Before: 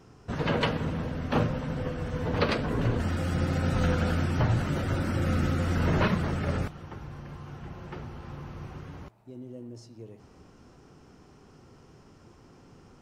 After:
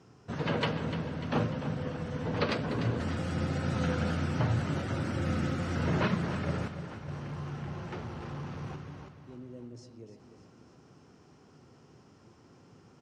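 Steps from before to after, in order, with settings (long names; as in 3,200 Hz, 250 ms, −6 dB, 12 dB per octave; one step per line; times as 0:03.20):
0:07.08–0:08.76: leveller curve on the samples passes 2
Chebyshev band-pass filter 110–7,200 Hz, order 2
repeating echo 297 ms, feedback 55%, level −11 dB
level −3 dB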